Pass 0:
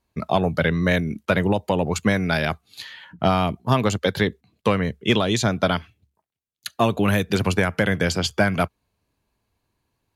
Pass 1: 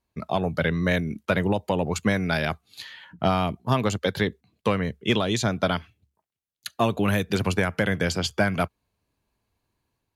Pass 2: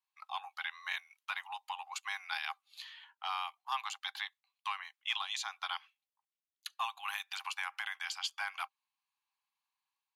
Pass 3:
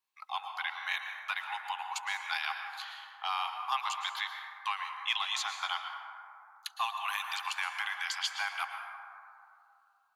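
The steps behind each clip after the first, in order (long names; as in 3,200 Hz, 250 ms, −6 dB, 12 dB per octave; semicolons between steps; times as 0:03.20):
automatic gain control gain up to 3 dB; level −5.5 dB
Chebyshev high-pass with heavy ripple 770 Hz, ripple 6 dB; level −6 dB
dense smooth reverb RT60 2.5 s, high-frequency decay 0.3×, pre-delay 100 ms, DRR 4 dB; level +3.5 dB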